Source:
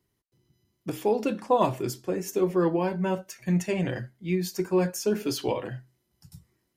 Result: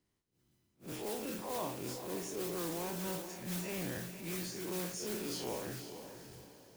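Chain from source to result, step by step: time blur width 98 ms; downsampling 22050 Hz; modulation noise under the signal 11 dB; harmonic-percussive split harmonic -10 dB; compressor, threshold -36 dBFS, peak gain reduction 11 dB; diffused feedback echo 0.492 s, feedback 40%, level -9.5 dB; transient shaper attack -7 dB, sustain +2 dB; gain +1 dB

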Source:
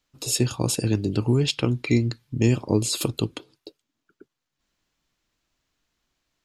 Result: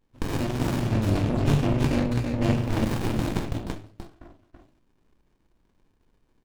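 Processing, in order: 2.57–3.21 block floating point 3-bit; bell 2800 Hz +9 dB 1.5 oct; de-hum 52.03 Hz, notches 3; compressor, threshold -26 dBFS, peak gain reduction 12.5 dB; tapped delay 41/331 ms -5.5/-3.5 dB; shoebox room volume 160 m³, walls furnished, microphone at 2.7 m; running maximum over 65 samples

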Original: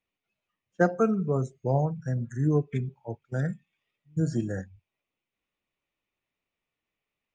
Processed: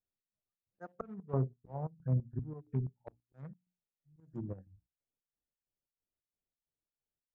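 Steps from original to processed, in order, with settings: Wiener smoothing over 41 samples; auto swell 0.725 s; low shelf 130 Hz +9 dB; notches 60/120/180/240/300 Hz; chopper 3 Hz, depth 65%, duty 60%; treble ducked by the level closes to 880 Hz, closed at -33 dBFS; bell 1000 Hz +10 dB 1.3 oct; upward expander 1.5:1, over -50 dBFS

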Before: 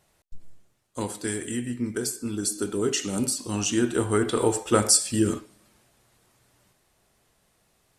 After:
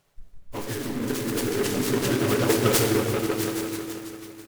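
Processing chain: repeats that get brighter 0.293 s, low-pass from 200 Hz, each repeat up 2 oct, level 0 dB; Schroeder reverb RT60 2.4 s, combs from 27 ms, DRR 4.5 dB; echoes that change speed 99 ms, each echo +2 st, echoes 2, each echo -6 dB; comb 7.1 ms, depth 40%; plain phase-vocoder stretch 0.56×; noise-modulated delay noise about 1400 Hz, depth 0.081 ms

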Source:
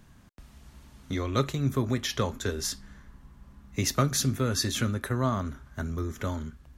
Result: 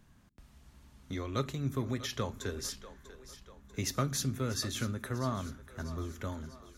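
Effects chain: split-band echo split 320 Hz, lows 83 ms, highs 0.643 s, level -14.5 dB; gain -7 dB

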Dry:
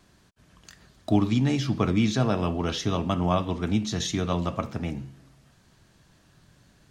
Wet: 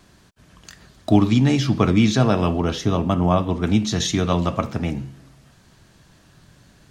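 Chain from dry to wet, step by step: 2.6–3.64 bell 3900 Hz -6 dB 2.8 oct; gain +6.5 dB

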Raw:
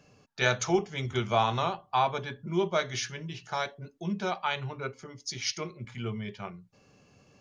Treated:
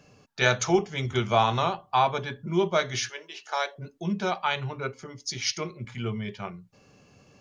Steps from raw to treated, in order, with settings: 3.09–3.76 HPF 420 Hz 24 dB/oct; gain +3.5 dB

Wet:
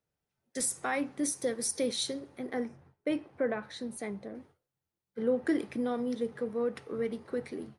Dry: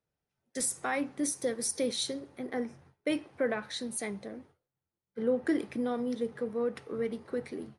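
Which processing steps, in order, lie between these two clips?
2.68–4.35 high shelf 2300 Hz -9.5 dB

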